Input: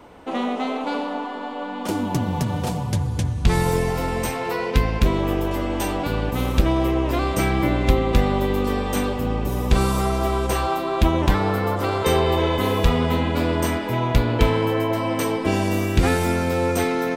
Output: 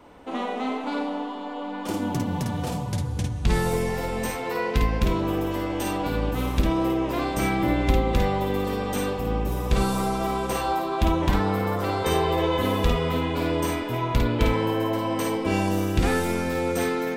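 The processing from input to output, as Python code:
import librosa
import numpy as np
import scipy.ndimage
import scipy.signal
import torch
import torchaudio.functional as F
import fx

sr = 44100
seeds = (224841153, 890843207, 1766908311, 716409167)

y = fx.echo_multitap(x, sr, ms=(51, 55), db=(-6.0, -6.5))
y = y * 10.0 ** (-5.0 / 20.0)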